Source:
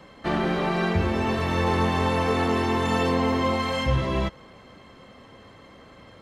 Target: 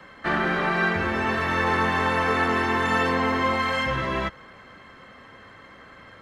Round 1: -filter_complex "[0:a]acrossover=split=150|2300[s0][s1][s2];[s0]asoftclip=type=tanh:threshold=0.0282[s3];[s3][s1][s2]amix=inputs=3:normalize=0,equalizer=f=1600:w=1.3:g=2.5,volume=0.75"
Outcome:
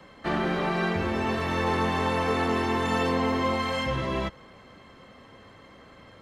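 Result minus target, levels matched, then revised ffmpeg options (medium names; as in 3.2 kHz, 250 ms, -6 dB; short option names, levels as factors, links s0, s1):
2 kHz band -4.5 dB
-filter_complex "[0:a]acrossover=split=150|2300[s0][s1][s2];[s0]asoftclip=type=tanh:threshold=0.0282[s3];[s3][s1][s2]amix=inputs=3:normalize=0,equalizer=f=1600:w=1.3:g=12,volume=0.75"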